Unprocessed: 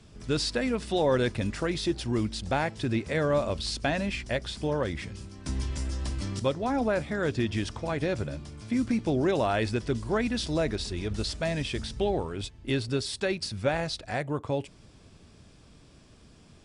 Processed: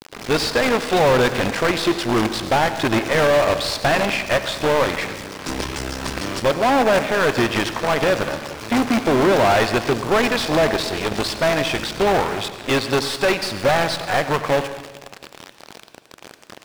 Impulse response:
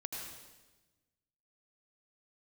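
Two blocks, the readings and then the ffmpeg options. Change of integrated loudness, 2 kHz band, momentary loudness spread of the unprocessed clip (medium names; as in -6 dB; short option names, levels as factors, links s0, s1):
+10.0 dB, +13.5 dB, 7 LU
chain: -filter_complex "[0:a]adynamicequalizer=threshold=0.0141:dfrequency=900:dqfactor=0.74:tfrequency=900:tqfactor=0.74:attack=5:release=100:ratio=0.375:range=2:mode=boostabove:tftype=bell,acrusher=bits=5:dc=4:mix=0:aa=0.000001,asplit=2[s0][s1];[s1]highpass=f=720:p=1,volume=17.8,asoftclip=type=tanh:threshold=0.266[s2];[s0][s2]amix=inputs=2:normalize=0,lowpass=f=2800:p=1,volume=0.501,asplit=2[s3][s4];[1:a]atrim=start_sample=2205[s5];[s4][s5]afir=irnorm=-1:irlink=0,volume=0.531[s6];[s3][s6]amix=inputs=2:normalize=0"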